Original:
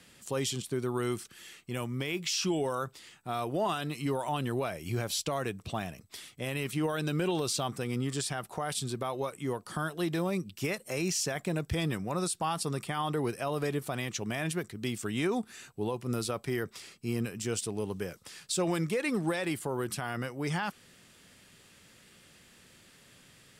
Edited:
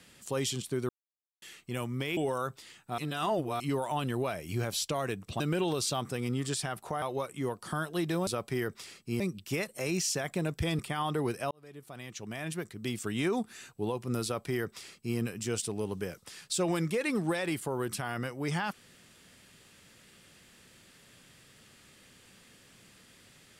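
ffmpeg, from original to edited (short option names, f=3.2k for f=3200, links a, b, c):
-filter_complex "[0:a]asplit=12[a][b][c][d][e][f][g][h][i][j][k][l];[a]atrim=end=0.89,asetpts=PTS-STARTPTS,afade=t=out:st=0.886:d=0.004:c=hsin[m];[b]atrim=start=0.89:end=1.42,asetpts=PTS-STARTPTS,volume=0[n];[c]atrim=start=1.42:end=2.172,asetpts=PTS-STARTPTS,afade=t=in:d=0.004:c=hsin[o];[d]atrim=start=2.538:end=3.352[p];[e]atrim=start=3.348:end=3.972,asetpts=PTS-STARTPTS,areverse[q];[f]atrim=start=3.968:end=5.772[r];[g]atrim=start=7.068:end=8.692[s];[h]atrim=start=9.058:end=10.312[t];[i]atrim=start=16.228:end=17.162[u];[j]atrim=start=10.308:end=11.902[v];[k]atrim=start=12.778:end=13.5,asetpts=PTS-STARTPTS,afade=t=out:st=0.718:d=0.004:c=hsin[w];[l]atrim=start=13.5,asetpts=PTS-STARTPTS,afade=t=in:d=1.54[x];[m][n][o]concat=n=3:v=0:a=1[y];[y][p]acrossfade=d=0.004:c1=hsin:c2=hsin[z];[z][q]acrossfade=d=0.004:c1=hsin:c2=hsin[aa];[aa][r]acrossfade=d=0.004:c1=hsin:c2=hsin[ab];[ab][s]acrossfade=d=0.004:c1=hsin:c2=hsin[ac];[ac][t]acrossfade=d=0.004:c1=hsin:c2=hsin[ad];[ad][u]acrossfade=d=0.004:c1=hsin:c2=hsin[ae];[ae][v]acrossfade=d=0.004:c1=hsin:c2=hsin[af];[w][x]concat=n=2:v=0:a=1[ag];[af][ag]acrossfade=d=0.004:c1=hsin:c2=hsin"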